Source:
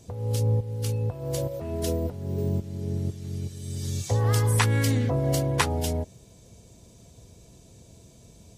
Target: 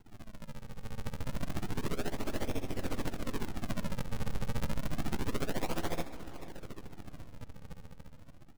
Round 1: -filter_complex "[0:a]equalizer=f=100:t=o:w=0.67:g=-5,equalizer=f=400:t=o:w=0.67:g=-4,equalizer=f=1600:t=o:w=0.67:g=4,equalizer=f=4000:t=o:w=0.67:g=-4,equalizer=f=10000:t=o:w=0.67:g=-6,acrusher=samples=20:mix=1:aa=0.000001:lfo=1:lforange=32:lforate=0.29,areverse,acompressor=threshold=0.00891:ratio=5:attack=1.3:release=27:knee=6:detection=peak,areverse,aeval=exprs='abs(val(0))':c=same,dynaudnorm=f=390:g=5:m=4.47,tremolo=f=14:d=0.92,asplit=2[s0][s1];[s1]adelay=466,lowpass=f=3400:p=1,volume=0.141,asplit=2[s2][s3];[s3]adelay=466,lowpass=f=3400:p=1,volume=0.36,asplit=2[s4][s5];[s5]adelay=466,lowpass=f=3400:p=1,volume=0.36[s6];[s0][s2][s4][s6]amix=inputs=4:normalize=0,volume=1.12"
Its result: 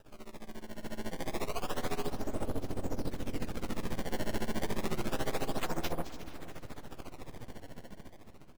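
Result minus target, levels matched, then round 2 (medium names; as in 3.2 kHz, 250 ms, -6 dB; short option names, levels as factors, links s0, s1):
decimation with a swept rate: distortion -9 dB
-filter_complex "[0:a]equalizer=f=100:t=o:w=0.67:g=-5,equalizer=f=400:t=o:w=0.67:g=-4,equalizer=f=1600:t=o:w=0.67:g=4,equalizer=f=4000:t=o:w=0.67:g=-4,equalizer=f=10000:t=o:w=0.67:g=-6,acrusher=samples=73:mix=1:aa=0.000001:lfo=1:lforange=117:lforate=0.29,areverse,acompressor=threshold=0.00891:ratio=5:attack=1.3:release=27:knee=6:detection=peak,areverse,aeval=exprs='abs(val(0))':c=same,dynaudnorm=f=390:g=5:m=4.47,tremolo=f=14:d=0.92,asplit=2[s0][s1];[s1]adelay=466,lowpass=f=3400:p=1,volume=0.141,asplit=2[s2][s3];[s3]adelay=466,lowpass=f=3400:p=1,volume=0.36,asplit=2[s4][s5];[s5]adelay=466,lowpass=f=3400:p=1,volume=0.36[s6];[s0][s2][s4][s6]amix=inputs=4:normalize=0,volume=1.12"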